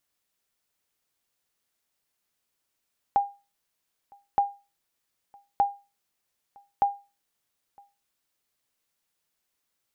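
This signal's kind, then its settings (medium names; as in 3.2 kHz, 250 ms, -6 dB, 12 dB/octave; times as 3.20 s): sonar ping 805 Hz, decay 0.29 s, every 1.22 s, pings 4, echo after 0.96 s, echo -30 dB -14 dBFS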